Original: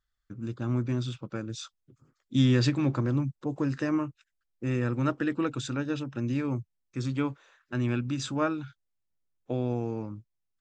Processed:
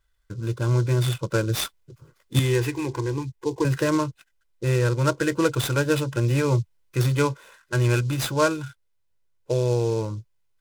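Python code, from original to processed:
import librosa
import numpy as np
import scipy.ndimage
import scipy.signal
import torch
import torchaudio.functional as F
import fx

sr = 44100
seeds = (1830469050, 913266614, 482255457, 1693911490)

y = x + 0.84 * np.pad(x, (int(2.0 * sr / 1000.0), 0))[:len(x)]
y = fx.rider(y, sr, range_db=4, speed_s=0.5)
y = fx.fixed_phaser(y, sr, hz=870.0, stages=8, at=(2.39, 3.65))
y = fx.noise_mod_delay(y, sr, seeds[0], noise_hz=5000.0, depth_ms=0.032)
y = F.gain(torch.from_numpy(y), 7.0).numpy()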